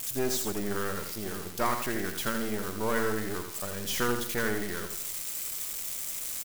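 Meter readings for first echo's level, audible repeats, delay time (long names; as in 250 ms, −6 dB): −7.0 dB, 3, 83 ms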